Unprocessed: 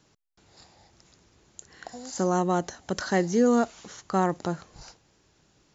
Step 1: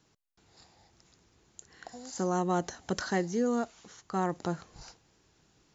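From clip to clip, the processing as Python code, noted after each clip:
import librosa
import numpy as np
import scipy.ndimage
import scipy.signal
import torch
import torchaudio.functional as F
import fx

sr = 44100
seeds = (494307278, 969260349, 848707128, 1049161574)

y = fx.notch(x, sr, hz=580.0, q=14.0)
y = fx.rider(y, sr, range_db=4, speed_s=0.5)
y = F.gain(torch.from_numpy(y), -4.0).numpy()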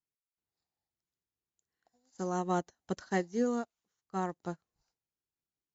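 y = fx.upward_expand(x, sr, threshold_db=-48.0, expansion=2.5)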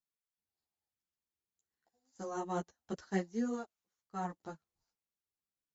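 y = fx.ensemble(x, sr)
y = F.gain(torch.from_numpy(y), -2.0).numpy()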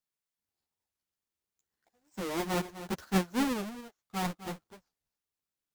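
y = fx.halfwave_hold(x, sr)
y = y + 10.0 ** (-13.0 / 20.0) * np.pad(y, (int(255 * sr / 1000.0), 0))[:len(y)]
y = fx.record_warp(y, sr, rpm=45.0, depth_cents=250.0)
y = F.gain(torch.from_numpy(y), 1.5).numpy()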